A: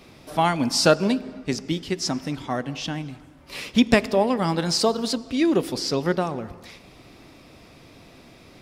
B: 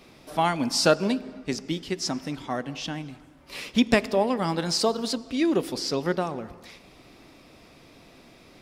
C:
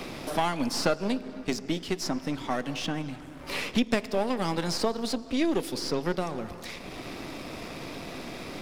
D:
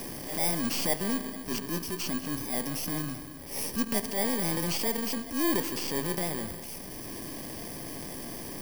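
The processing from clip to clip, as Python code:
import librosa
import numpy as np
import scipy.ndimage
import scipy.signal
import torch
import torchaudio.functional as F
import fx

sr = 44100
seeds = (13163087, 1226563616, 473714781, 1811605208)

y1 = fx.peak_eq(x, sr, hz=96.0, db=-5.0, octaves=1.3)
y1 = y1 * librosa.db_to_amplitude(-2.5)
y2 = np.where(y1 < 0.0, 10.0 ** (-7.0 / 20.0) * y1, y1)
y2 = fx.band_squash(y2, sr, depth_pct=70)
y3 = fx.bit_reversed(y2, sr, seeds[0], block=32)
y3 = fx.transient(y3, sr, attack_db=-9, sustain_db=4)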